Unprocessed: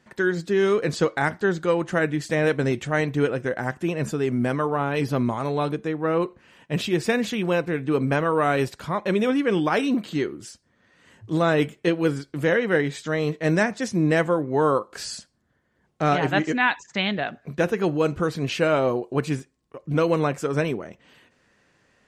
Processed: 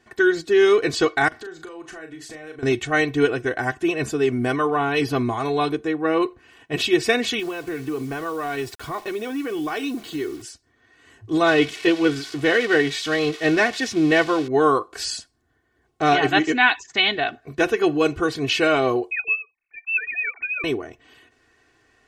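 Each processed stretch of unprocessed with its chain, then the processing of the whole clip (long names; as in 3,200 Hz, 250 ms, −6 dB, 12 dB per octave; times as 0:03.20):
0:01.28–0:02.63: low-shelf EQ 340 Hz −5.5 dB + downward compressor 8 to 1, threshold −37 dBFS + double-tracking delay 38 ms −7.5 dB
0:07.39–0:10.42: downward compressor 12 to 1, threshold −25 dBFS + bit-depth reduction 8 bits, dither none
0:11.46–0:14.48: spike at every zero crossing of −20.5 dBFS + low-pass filter 4,000 Hz
0:19.11–0:20.64: three sine waves on the formant tracks + downward compressor 2 to 1, threshold −34 dBFS + voice inversion scrambler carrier 2,900 Hz
whole clip: comb filter 2.7 ms, depth 86%; dynamic equaliser 3,400 Hz, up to +6 dB, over −37 dBFS, Q 0.73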